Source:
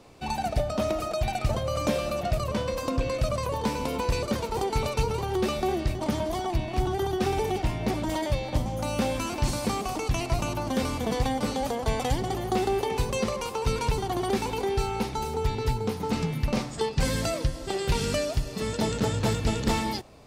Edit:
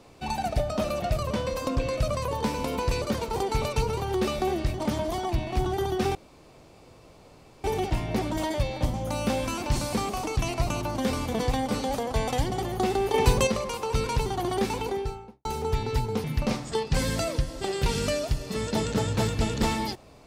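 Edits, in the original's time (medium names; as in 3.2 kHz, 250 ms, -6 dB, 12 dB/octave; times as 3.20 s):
0.84–2.05 s: delete
7.36 s: insert room tone 1.49 s
12.86–13.19 s: gain +6.5 dB
14.47–15.17 s: studio fade out
15.96–16.30 s: delete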